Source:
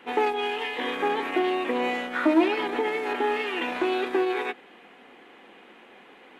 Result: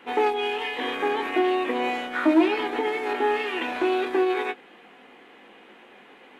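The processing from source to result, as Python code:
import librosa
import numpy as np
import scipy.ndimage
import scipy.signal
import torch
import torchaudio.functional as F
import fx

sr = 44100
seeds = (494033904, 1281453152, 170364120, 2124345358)

y = fx.doubler(x, sr, ms=19.0, db=-8.0)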